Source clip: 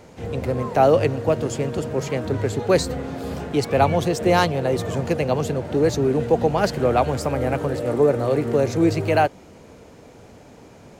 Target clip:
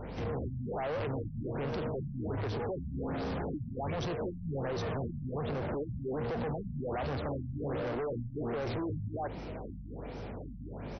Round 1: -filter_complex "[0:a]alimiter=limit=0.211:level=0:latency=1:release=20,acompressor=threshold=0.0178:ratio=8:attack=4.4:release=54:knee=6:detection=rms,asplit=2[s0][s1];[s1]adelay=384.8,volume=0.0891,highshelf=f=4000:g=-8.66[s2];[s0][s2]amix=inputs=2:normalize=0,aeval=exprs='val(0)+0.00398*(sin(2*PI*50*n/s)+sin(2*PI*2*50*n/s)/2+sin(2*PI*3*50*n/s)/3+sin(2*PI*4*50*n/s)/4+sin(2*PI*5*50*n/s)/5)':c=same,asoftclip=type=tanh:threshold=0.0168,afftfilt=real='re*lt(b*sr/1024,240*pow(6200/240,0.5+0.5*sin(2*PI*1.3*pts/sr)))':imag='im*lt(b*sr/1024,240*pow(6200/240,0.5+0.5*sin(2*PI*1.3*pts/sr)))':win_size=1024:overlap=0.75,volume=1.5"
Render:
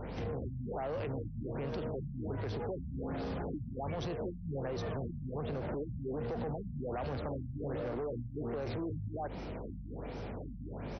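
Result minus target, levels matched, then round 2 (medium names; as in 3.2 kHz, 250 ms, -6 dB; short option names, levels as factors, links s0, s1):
compression: peak gain reduction +7.5 dB
-filter_complex "[0:a]alimiter=limit=0.211:level=0:latency=1:release=20,acompressor=threshold=0.0473:ratio=8:attack=4.4:release=54:knee=6:detection=rms,asplit=2[s0][s1];[s1]adelay=384.8,volume=0.0891,highshelf=f=4000:g=-8.66[s2];[s0][s2]amix=inputs=2:normalize=0,aeval=exprs='val(0)+0.00398*(sin(2*PI*50*n/s)+sin(2*PI*2*50*n/s)/2+sin(2*PI*3*50*n/s)/3+sin(2*PI*4*50*n/s)/4+sin(2*PI*5*50*n/s)/5)':c=same,asoftclip=type=tanh:threshold=0.0168,afftfilt=real='re*lt(b*sr/1024,240*pow(6200/240,0.5+0.5*sin(2*PI*1.3*pts/sr)))':imag='im*lt(b*sr/1024,240*pow(6200/240,0.5+0.5*sin(2*PI*1.3*pts/sr)))':win_size=1024:overlap=0.75,volume=1.5"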